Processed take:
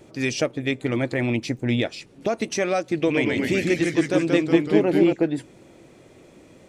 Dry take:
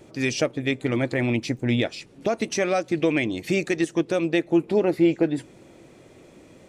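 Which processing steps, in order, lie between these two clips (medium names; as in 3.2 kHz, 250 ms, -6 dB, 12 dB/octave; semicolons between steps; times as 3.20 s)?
2.96–5.13 s: ever faster or slower copies 113 ms, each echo -1 st, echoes 3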